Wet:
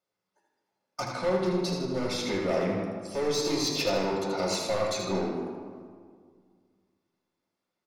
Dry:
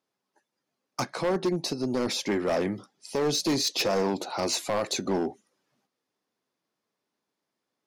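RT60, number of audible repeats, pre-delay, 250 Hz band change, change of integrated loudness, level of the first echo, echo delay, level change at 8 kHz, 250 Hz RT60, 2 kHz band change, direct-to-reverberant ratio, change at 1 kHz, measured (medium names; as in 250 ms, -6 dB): 1.9 s, 1, 3 ms, -1.5 dB, -1.0 dB, -5.5 dB, 79 ms, -3.5 dB, 2.3 s, -1.0 dB, -4.0 dB, -1.0 dB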